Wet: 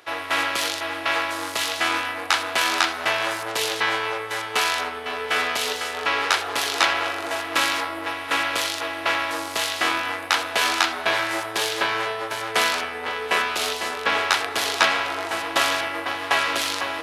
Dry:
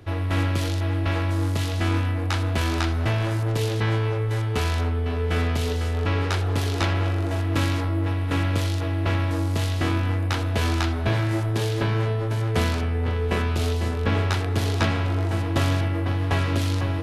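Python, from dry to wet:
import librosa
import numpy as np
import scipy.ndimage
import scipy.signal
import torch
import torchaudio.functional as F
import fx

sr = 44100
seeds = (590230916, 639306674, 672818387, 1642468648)

p1 = scipy.signal.sosfilt(scipy.signal.butter(2, 830.0, 'highpass', fs=sr, output='sos'), x)
p2 = np.sign(p1) * np.maximum(np.abs(p1) - 10.0 ** (-46.0 / 20.0), 0.0)
p3 = p1 + (p2 * 10.0 ** (-8.0 / 20.0))
y = p3 * 10.0 ** (7.0 / 20.0)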